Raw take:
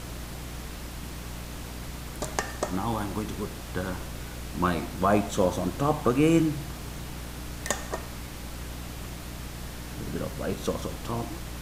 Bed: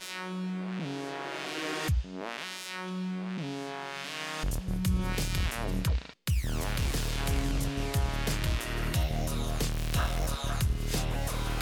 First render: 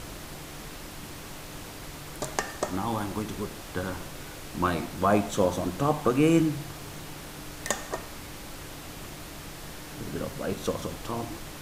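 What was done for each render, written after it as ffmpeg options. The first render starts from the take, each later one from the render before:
-af "bandreject=f=60:t=h:w=6,bandreject=f=120:t=h:w=6,bandreject=f=180:t=h:w=6,bandreject=f=240:t=h:w=6"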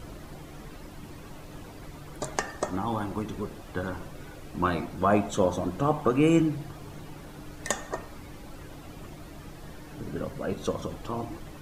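-af "afftdn=nr=11:nf=-42"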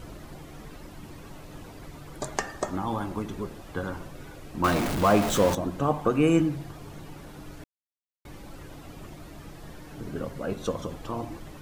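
-filter_complex "[0:a]asettb=1/sr,asplit=3[a][b][c];[a]atrim=end=4.644[d];[b]atrim=start=4.64:end=5.55,asetpts=PTS-STARTPTS,afade=t=in:d=0.004:c=qsin,afade=t=out:st=0.906:d=0.004:c=qsin,aeval=exprs='val(0)+0.5*0.0596*sgn(val(0))':c=same[e];[c]atrim=start=5.546[f];[d][e]acrossfade=d=0.004:c1=hsin:c2=qsin[g];[g][f]acrossfade=d=0.004:c1=qsin:c2=hsin,asplit=3[h][i][j];[h]atrim=end=7.64,asetpts=PTS-STARTPTS,afade=t=out:st=7.636:d=0.004:c=hsin[k];[i]atrim=start=7.64:end=8.25,asetpts=PTS-STARTPTS,volume=0[l];[j]atrim=start=8.25,asetpts=PTS-STARTPTS,afade=t=in:d=0.004:c=hsin[m];[k][l][m]concat=n=3:v=0:a=1"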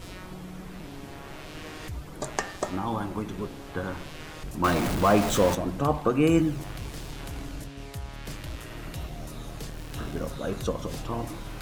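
-filter_complex "[1:a]volume=-8.5dB[a];[0:a][a]amix=inputs=2:normalize=0"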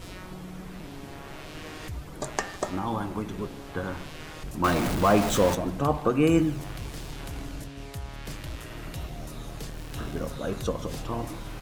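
-filter_complex "[0:a]asplit=2[a][b];[b]adelay=151.6,volume=-21dB,highshelf=f=4k:g=-3.41[c];[a][c]amix=inputs=2:normalize=0"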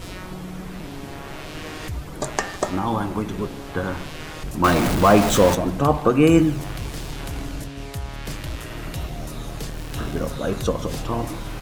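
-af "volume=6.5dB,alimiter=limit=-3dB:level=0:latency=1"

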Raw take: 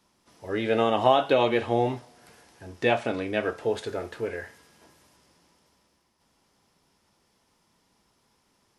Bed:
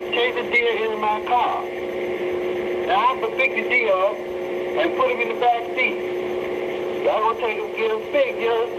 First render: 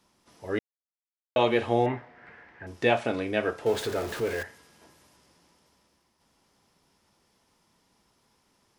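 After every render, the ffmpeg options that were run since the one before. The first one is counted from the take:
-filter_complex "[0:a]asettb=1/sr,asplit=3[a][b][c];[a]atrim=end=1.864[d];[b]atrim=start=1.86:end=2.67,asetpts=PTS-STARTPTS,afade=t=in:d=0.004:c=qsin,afade=t=out:st=0.806:d=0.004:c=qsin,lowpass=f=1.9k:t=q:w=3.5[e];[c]atrim=start=2.666[f];[d][e]acrossfade=d=0.004:c1=hsin:c2=qsin[g];[g][f]acrossfade=d=0.004:c1=qsin:c2=hsin,asettb=1/sr,asplit=3[h][i][j];[h]atrim=end=3.664[k];[i]atrim=start=3.66:end=4.43,asetpts=PTS-STARTPTS,afade=t=in:d=0.004:c=qsin,afade=t=out:st=0.766:d=0.004:c=qsin,aeval=exprs='val(0)+0.5*0.0211*sgn(val(0))':c=same[l];[j]atrim=start=4.426[m];[k][l]acrossfade=d=0.004:c1=hsin:c2=qsin[n];[n][m]acrossfade=d=0.004:c1=qsin:c2=hsin,asplit=3[o][p][q];[o]atrim=end=0.59,asetpts=PTS-STARTPTS,afade=t=out:st=0.586:d=0.004:c=hsin[r];[p]atrim=start=0.59:end=1.36,asetpts=PTS-STARTPTS,volume=0[s];[q]atrim=start=1.36,asetpts=PTS-STARTPTS,afade=t=in:d=0.004:c=hsin[t];[r][s][t]concat=n=3:v=0:a=1"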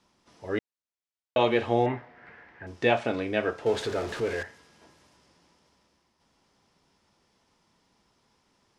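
-af "lowpass=7.2k"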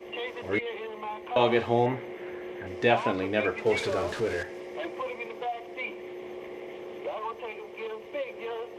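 -filter_complex "[1:a]volume=-15dB[a];[0:a][a]amix=inputs=2:normalize=0"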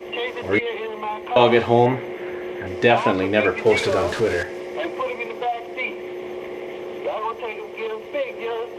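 -af "volume=8.5dB,alimiter=limit=-3dB:level=0:latency=1"

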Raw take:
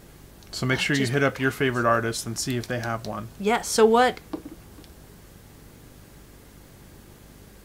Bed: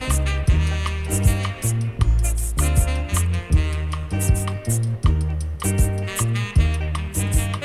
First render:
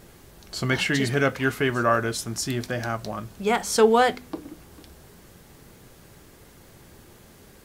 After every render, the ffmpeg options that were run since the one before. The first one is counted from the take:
-af "bandreject=f=50:t=h:w=4,bandreject=f=100:t=h:w=4,bandreject=f=150:t=h:w=4,bandreject=f=200:t=h:w=4,bandreject=f=250:t=h:w=4,bandreject=f=300:t=h:w=4"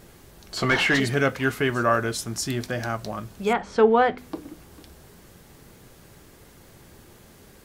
-filter_complex "[0:a]asettb=1/sr,asplit=3[a][b][c];[a]atrim=end=0.574[d];[b]atrim=start=0.57:end=1,asetpts=PTS-STARTPTS,afade=t=in:d=0.004:c=qsin,afade=t=out:st=0.426:d=0.004:c=qsin,asplit=2[e][f];[f]highpass=f=720:p=1,volume=19dB,asoftclip=type=tanh:threshold=-9dB[g];[e][g]amix=inputs=2:normalize=0,lowpass=f=1.7k:p=1,volume=-6dB[h];[c]atrim=start=0.996[i];[d][h]acrossfade=d=0.004:c1=hsin:c2=qsin[j];[j][i]acrossfade=d=0.004:c1=qsin:c2=hsin,asettb=1/sr,asplit=3[k][l][m];[k]atrim=end=3.534[n];[l]atrim=start=3.53:end=4.18,asetpts=PTS-STARTPTS,afade=t=in:d=0.004:c=qsin,afade=t=out:st=0.646:d=0.004:c=qsin,lowpass=2.2k[o];[m]atrim=start=4.176[p];[n][o]acrossfade=d=0.004:c1=hsin:c2=qsin[q];[q][p]acrossfade=d=0.004:c1=qsin:c2=hsin"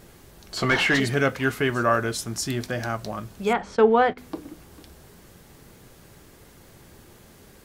-filter_complex "[0:a]asplit=3[a][b][c];[a]afade=t=out:st=3.75:d=0.02[d];[b]agate=range=-14dB:threshold=-31dB:ratio=16:release=100:detection=peak,afade=t=in:st=3.75:d=0.02,afade=t=out:st=4.16:d=0.02[e];[c]afade=t=in:st=4.16:d=0.02[f];[d][e][f]amix=inputs=3:normalize=0"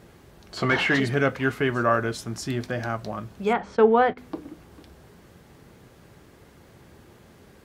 -af "highpass=50,highshelf=f=4.8k:g=-11"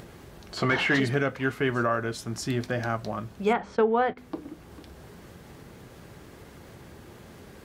-af "acompressor=mode=upward:threshold=-40dB:ratio=2.5,alimiter=limit=-13.5dB:level=0:latency=1:release=481"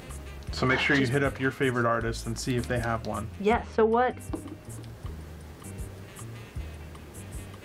-filter_complex "[1:a]volume=-21dB[a];[0:a][a]amix=inputs=2:normalize=0"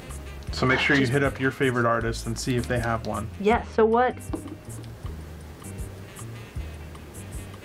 -af "volume=3dB"

